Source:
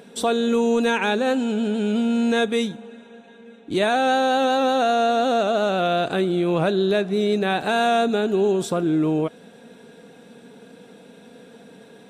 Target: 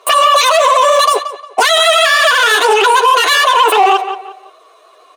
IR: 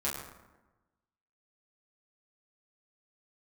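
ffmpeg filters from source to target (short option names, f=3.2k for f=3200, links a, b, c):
-filter_complex "[0:a]agate=range=-21dB:threshold=-35dB:ratio=16:detection=peak,highshelf=f=2.5k:g=-7,aecho=1:1:6.9:0.76,acompressor=threshold=-19dB:ratio=6,volume=20.5dB,asoftclip=hard,volume=-20.5dB,flanger=delay=18.5:depth=5.9:speed=2.7,adynamicsmooth=sensitivity=3.5:basefreq=5.1k,asetrate=46722,aresample=44100,atempo=0.943874,highpass=170,equalizer=f=770:t=q:w=4:g=-8,equalizer=f=1.2k:t=q:w=4:g=10,equalizer=f=6k:t=q:w=4:g=6,lowpass=f=9.8k:w=0.5412,lowpass=f=9.8k:w=1.3066,asplit=2[a][b];[b]adelay=414,lowpass=f=1.5k:p=1,volume=-16dB,asplit=2[c][d];[d]adelay=414,lowpass=f=1.5k:p=1,volume=0.33,asplit=2[e][f];[f]adelay=414,lowpass=f=1.5k:p=1,volume=0.33[g];[c][e][g]amix=inputs=3:normalize=0[h];[a][h]amix=inputs=2:normalize=0,asetrate=103194,aresample=44100,alimiter=level_in=25dB:limit=-1dB:release=50:level=0:latency=1,volume=-1dB"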